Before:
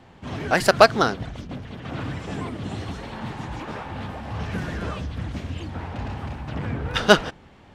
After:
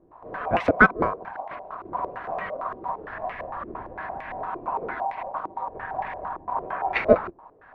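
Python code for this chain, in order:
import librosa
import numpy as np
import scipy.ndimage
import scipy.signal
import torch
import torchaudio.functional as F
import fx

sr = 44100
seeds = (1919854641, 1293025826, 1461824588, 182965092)

y = x * np.sin(2.0 * np.pi * 860.0 * np.arange(len(x)) / sr)
y = fx.filter_held_lowpass(y, sr, hz=8.8, low_hz=350.0, high_hz=2100.0)
y = y * 10.0 ** (-3.0 / 20.0)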